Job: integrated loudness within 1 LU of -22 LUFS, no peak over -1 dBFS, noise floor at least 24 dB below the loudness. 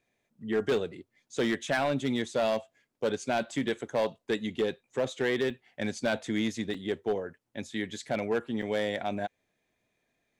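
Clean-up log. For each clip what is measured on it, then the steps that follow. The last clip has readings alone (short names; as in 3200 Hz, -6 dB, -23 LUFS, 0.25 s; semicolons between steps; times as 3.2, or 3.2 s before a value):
clipped 1.6%; flat tops at -21.5 dBFS; dropouts 4; longest dropout 3.8 ms; loudness -31.5 LUFS; peak -21.5 dBFS; loudness target -22.0 LUFS
-> clip repair -21.5 dBFS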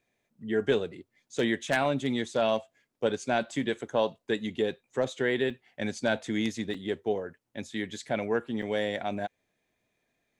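clipped 0.0%; dropouts 4; longest dropout 3.8 ms
-> interpolate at 4.71/5.5/6.74/8.62, 3.8 ms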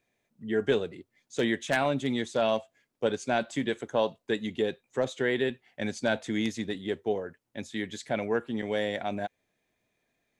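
dropouts 0; loudness -30.5 LUFS; peak -12.5 dBFS; loudness target -22.0 LUFS
-> gain +8.5 dB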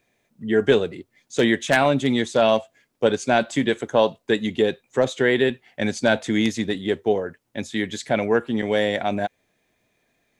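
loudness -22.0 LUFS; peak -4.0 dBFS; noise floor -71 dBFS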